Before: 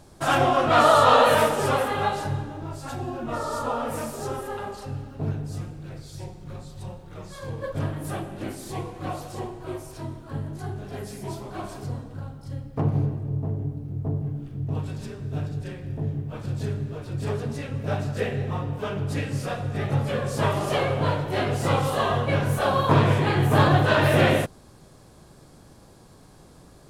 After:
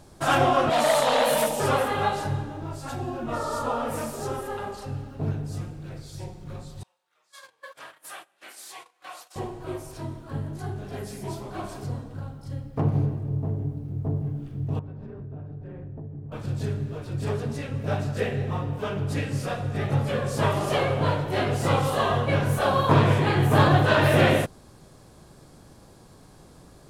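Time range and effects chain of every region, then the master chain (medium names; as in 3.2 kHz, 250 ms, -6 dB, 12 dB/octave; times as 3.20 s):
0.70–1.60 s: treble shelf 5.9 kHz +8 dB + static phaser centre 370 Hz, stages 6 + transformer saturation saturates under 1.4 kHz
6.83–9.36 s: high-pass 1.3 kHz + gate -47 dBFS, range -18 dB
14.79–16.32 s: low-pass 1.1 kHz + compression 10:1, threshold -34 dBFS
whole clip: none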